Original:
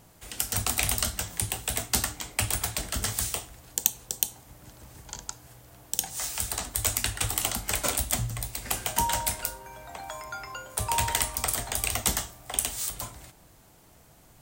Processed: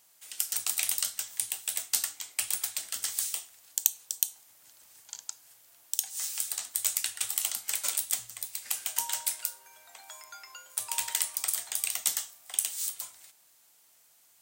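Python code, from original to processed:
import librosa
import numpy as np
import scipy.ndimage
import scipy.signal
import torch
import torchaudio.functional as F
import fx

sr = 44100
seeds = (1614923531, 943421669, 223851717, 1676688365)

y = fx.highpass(x, sr, hz=1500.0, slope=6)
y = fx.high_shelf(y, sr, hz=2300.0, db=9.0)
y = y * 10.0 ** (-9.5 / 20.0)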